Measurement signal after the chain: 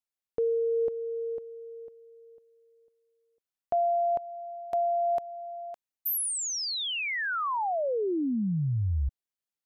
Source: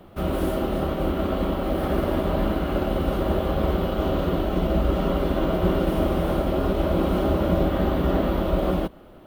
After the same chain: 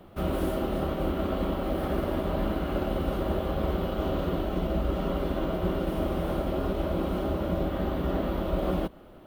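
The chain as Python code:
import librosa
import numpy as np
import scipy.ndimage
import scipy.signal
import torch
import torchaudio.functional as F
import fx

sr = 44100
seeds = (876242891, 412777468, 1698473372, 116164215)

y = fx.rider(x, sr, range_db=3, speed_s=0.5)
y = y * librosa.db_to_amplitude(-5.5)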